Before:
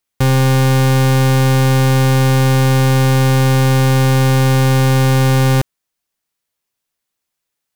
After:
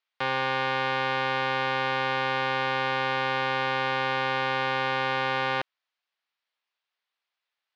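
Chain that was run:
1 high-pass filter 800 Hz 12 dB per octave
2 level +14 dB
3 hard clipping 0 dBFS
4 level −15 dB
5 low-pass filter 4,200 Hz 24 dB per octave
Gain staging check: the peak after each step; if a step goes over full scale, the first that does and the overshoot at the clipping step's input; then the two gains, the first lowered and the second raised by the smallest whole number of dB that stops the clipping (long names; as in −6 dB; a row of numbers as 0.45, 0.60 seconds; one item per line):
−6.0, +8.0, 0.0, −15.0, −15.0 dBFS
step 2, 8.0 dB
step 2 +6 dB, step 4 −7 dB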